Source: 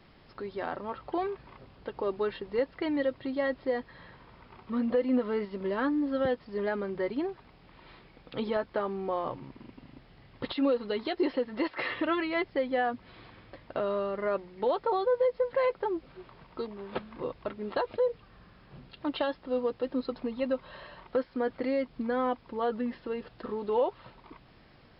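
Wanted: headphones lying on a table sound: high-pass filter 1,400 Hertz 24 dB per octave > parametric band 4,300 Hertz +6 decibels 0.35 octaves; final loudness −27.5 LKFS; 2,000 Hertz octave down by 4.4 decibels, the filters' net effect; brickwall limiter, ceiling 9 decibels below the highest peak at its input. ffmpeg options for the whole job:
ffmpeg -i in.wav -af "equalizer=frequency=2000:width_type=o:gain=-4.5,alimiter=level_in=2.5dB:limit=-24dB:level=0:latency=1,volume=-2.5dB,highpass=frequency=1400:width=0.5412,highpass=frequency=1400:width=1.3066,equalizer=frequency=4300:width_type=o:width=0.35:gain=6,volume=21.5dB" out.wav

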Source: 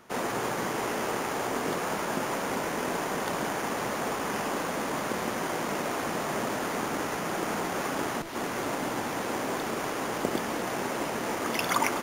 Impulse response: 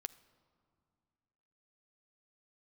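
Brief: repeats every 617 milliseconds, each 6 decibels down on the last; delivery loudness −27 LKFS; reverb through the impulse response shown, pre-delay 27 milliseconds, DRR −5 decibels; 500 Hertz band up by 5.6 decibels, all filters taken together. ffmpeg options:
-filter_complex "[0:a]equalizer=frequency=500:width_type=o:gain=7,aecho=1:1:617|1234|1851|2468|3085|3702:0.501|0.251|0.125|0.0626|0.0313|0.0157,asplit=2[link_01][link_02];[1:a]atrim=start_sample=2205,adelay=27[link_03];[link_02][link_03]afir=irnorm=-1:irlink=0,volume=8.5dB[link_04];[link_01][link_04]amix=inputs=2:normalize=0,volume=-6.5dB"

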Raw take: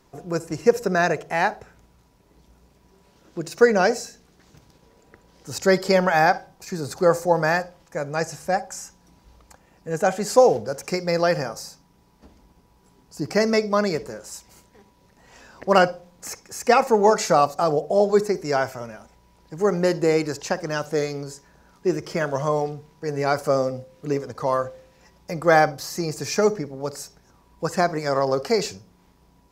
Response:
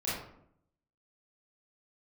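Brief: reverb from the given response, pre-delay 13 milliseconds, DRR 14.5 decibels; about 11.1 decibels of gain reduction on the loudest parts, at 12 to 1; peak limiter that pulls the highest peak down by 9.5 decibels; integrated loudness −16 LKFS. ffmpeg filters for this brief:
-filter_complex "[0:a]acompressor=threshold=-20dB:ratio=12,alimiter=limit=-19dB:level=0:latency=1,asplit=2[link_01][link_02];[1:a]atrim=start_sample=2205,adelay=13[link_03];[link_02][link_03]afir=irnorm=-1:irlink=0,volume=-20.5dB[link_04];[link_01][link_04]amix=inputs=2:normalize=0,volume=15dB"

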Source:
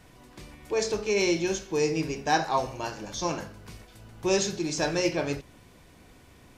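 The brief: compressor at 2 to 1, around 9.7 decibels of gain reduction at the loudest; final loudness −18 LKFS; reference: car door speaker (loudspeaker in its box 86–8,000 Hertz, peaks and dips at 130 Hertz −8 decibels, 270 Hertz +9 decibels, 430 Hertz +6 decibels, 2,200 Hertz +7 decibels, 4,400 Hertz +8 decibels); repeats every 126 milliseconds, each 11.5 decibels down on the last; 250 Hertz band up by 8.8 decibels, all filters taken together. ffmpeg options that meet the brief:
ffmpeg -i in.wav -af "equalizer=frequency=250:width_type=o:gain=7,acompressor=threshold=-36dB:ratio=2,highpass=86,equalizer=frequency=130:width_type=q:width=4:gain=-8,equalizer=frequency=270:width_type=q:width=4:gain=9,equalizer=frequency=430:width_type=q:width=4:gain=6,equalizer=frequency=2200:width_type=q:width=4:gain=7,equalizer=frequency=4400:width_type=q:width=4:gain=8,lowpass=frequency=8000:width=0.5412,lowpass=frequency=8000:width=1.3066,aecho=1:1:126|252|378:0.266|0.0718|0.0194,volume=12dB" out.wav

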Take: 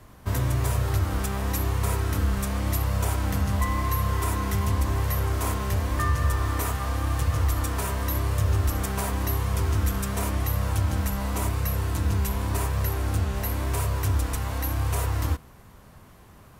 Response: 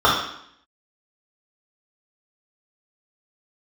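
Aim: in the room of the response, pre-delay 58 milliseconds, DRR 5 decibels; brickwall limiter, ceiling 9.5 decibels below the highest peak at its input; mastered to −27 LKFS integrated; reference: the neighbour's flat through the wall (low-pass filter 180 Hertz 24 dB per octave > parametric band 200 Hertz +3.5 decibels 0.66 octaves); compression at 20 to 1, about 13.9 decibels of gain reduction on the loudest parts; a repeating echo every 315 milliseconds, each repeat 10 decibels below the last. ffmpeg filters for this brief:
-filter_complex "[0:a]acompressor=threshold=-33dB:ratio=20,alimiter=level_in=9.5dB:limit=-24dB:level=0:latency=1,volume=-9.5dB,aecho=1:1:315|630|945|1260:0.316|0.101|0.0324|0.0104,asplit=2[link_01][link_02];[1:a]atrim=start_sample=2205,adelay=58[link_03];[link_02][link_03]afir=irnorm=-1:irlink=0,volume=-29.5dB[link_04];[link_01][link_04]amix=inputs=2:normalize=0,lowpass=frequency=180:width=0.5412,lowpass=frequency=180:width=1.3066,equalizer=frequency=200:width_type=o:width=0.66:gain=3.5,volume=14.5dB"

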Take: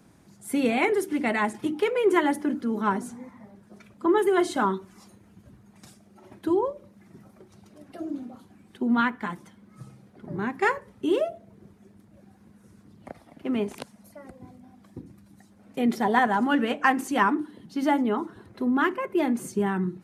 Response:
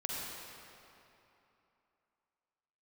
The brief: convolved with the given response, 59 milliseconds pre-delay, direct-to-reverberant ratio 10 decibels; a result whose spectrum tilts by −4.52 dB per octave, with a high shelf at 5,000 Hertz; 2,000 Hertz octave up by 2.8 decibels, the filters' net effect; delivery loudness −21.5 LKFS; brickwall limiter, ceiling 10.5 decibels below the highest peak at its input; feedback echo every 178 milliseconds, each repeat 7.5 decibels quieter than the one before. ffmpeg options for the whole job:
-filter_complex "[0:a]equalizer=frequency=2000:width_type=o:gain=4.5,highshelf=frequency=5000:gain=-8,alimiter=limit=-17dB:level=0:latency=1,aecho=1:1:178|356|534|712|890:0.422|0.177|0.0744|0.0312|0.0131,asplit=2[link_01][link_02];[1:a]atrim=start_sample=2205,adelay=59[link_03];[link_02][link_03]afir=irnorm=-1:irlink=0,volume=-13.5dB[link_04];[link_01][link_04]amix=inputs=2:normalize=0,volume=5.5dB"

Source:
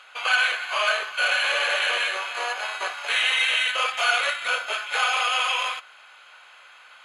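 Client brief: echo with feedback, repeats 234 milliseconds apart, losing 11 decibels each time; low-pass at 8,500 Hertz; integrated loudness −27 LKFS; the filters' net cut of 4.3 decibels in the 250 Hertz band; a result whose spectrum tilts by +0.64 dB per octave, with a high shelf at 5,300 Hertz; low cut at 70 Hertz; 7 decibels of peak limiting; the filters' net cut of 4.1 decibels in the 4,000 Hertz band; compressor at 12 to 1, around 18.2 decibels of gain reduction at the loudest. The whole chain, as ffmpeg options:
ffmpeg -i in.wav -af "highpass=70,lowpass=8500,equalizer=frequency=250:width_type=o:gain=-8,equalizer=frequency=4000:width_type=o:gain=-7.5,highshelf=frequency=5300:gain=4,acompressor=threshold=-36dB:ratio=12,alimiter=level_in=7.5dB:limit=-24dB:level=0:latency=1,volume=-7.5dB,aecho=1:1:234|468|702:0.282|0.0789|0.0221,volume=13dB" out.wav

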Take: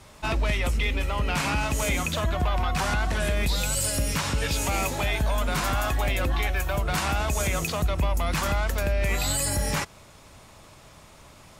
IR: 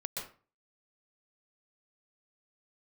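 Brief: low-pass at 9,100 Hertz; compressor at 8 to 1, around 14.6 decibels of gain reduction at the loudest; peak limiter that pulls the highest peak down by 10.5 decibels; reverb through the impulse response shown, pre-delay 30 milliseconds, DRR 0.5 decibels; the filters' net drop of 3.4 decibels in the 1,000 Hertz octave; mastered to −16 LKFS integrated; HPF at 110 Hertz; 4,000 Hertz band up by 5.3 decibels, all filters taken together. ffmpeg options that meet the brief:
-filter_complex "[0:a]highpass=110,lowpass=9100,equalizer=frequency=1000:width_type=o:gain=-5,equalizer=frequency=4000:width_type=o:gain=7,acompressor=threshold=-39dB:ratio=8,alimiter=level_in=12.5dB:limit=-24dB:level=0:latency=1,volume=-12.5dB,asplit=2[link_01][link_02];[1:a]atrim=start_sample=2205,adelay=30[link_03];[link_02][link_03]afir=irnorm=-1:irlink=0,volume=-2dB[link_04];[link_01][link_04]amix=inputs=2:normalize=0,volume=27dB"

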